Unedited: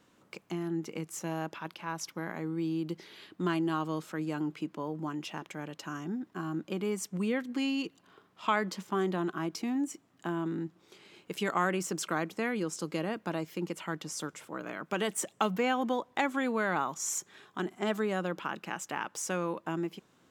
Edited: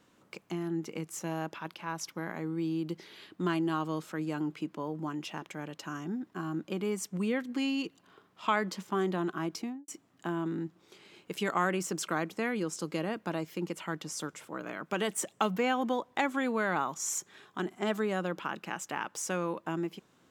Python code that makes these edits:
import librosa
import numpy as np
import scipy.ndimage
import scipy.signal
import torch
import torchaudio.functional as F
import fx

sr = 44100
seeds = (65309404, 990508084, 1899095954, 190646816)

y = fx.studio_fade_out(x, sr, start_s=9.54, length_s=0.34)